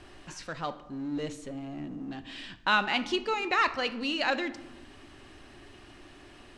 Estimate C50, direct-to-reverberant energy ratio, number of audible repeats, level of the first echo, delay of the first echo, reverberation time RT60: 14.5 dB, 11.0 dB, no echo audible, no echo audible, no echo audible, 1.1 s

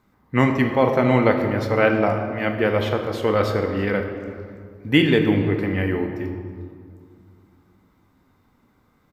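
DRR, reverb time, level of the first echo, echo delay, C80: 3.5 dB, 2.1 s, −20.5 dB, 325 ms, 7.0 dB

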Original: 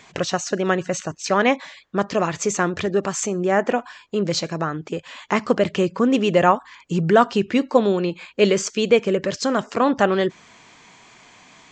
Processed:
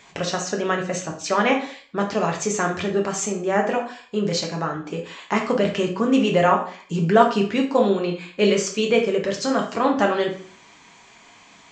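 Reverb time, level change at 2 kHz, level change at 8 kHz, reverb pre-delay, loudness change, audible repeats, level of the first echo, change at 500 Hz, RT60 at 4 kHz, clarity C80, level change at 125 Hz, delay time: 0.50 s, −1.0 dB, −0.5 dB, 5 ms, −1.0 dB, no echo audible, no echo audible, −1.0 dB, 0.40 s, 13.0 dB, −1.0 dB, no echo audible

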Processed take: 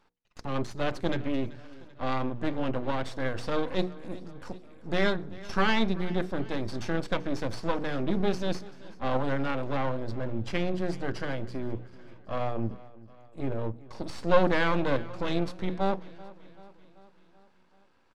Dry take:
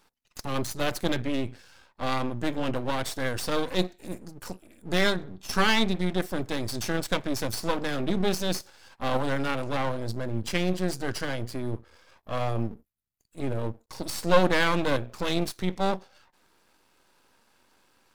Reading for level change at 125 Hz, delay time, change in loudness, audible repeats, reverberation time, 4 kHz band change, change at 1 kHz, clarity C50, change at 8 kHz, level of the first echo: −2.0 dB, 385 ms, −2.5 dB, 4, no reverb audible, −7.0 dB, −2.0 dB, no reverb audible, −14.0 dB, −20.0 dB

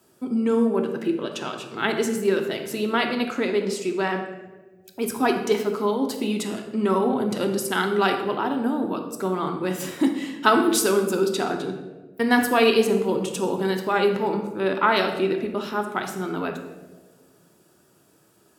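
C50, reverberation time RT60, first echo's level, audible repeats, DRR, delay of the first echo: 7.0 dB, 1.4 s, no echo audible, no echo audible, 4.0 dB, no echo audible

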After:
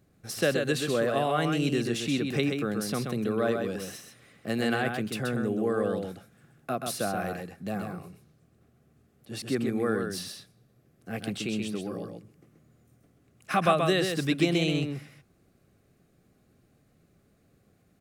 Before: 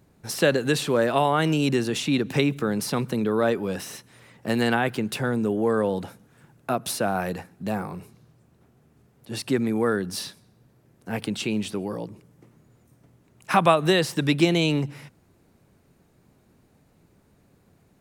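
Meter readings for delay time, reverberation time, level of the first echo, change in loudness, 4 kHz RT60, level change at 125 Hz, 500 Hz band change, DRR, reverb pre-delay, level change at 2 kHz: 130 ms, no reverb audible, −5.0 dB, −4.5 dB, no reverb audible, −4.5 dB, −4.5 dB, no reverb audible, no reverb audible, −4.5 dB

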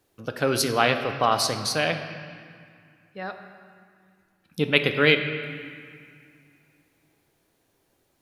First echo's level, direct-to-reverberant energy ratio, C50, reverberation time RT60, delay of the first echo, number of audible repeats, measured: no echo audible, 6.5 dB, 8.0 dB, 2.1 s, no echo audible, no echo audible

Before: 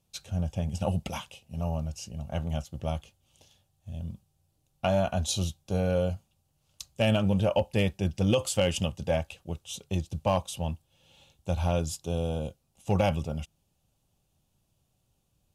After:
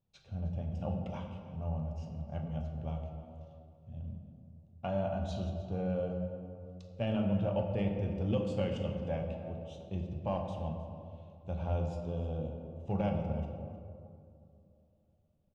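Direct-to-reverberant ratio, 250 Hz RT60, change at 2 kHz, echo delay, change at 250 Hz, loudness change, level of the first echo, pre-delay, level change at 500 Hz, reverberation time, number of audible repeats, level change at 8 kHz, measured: 2.0 dB, 3.1 s, −13.0 dB, 310 ms, −4.5 dB, −7.0 dB, −17.0 dB, 6 ms, −7.0 dB, 2.5 s, 1, below −25 dB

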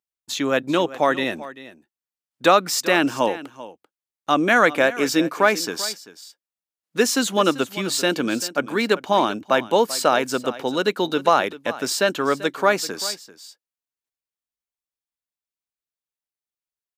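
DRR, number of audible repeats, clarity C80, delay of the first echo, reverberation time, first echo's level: no reverb audible, 1, no reverb audible, 390 ms, no reverb audible, −16.5 dB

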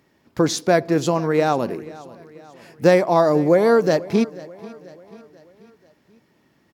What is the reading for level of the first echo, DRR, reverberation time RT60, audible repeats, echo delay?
−20.0 dB, no reverb audible, no reverb audible, 3, 488 ms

